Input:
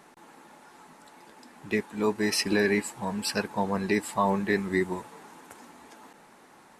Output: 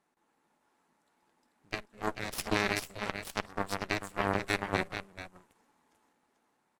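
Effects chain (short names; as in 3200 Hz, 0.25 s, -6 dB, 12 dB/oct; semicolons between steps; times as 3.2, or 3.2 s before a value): tapped delay 51/207/439 ms -13.5/-18.5/-4 dB; added harmonics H 2 -7 dB, 3 -10 dB, 6 -42 dB, 7 -34 dB, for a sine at -11.5 dBFS; gain -2 dB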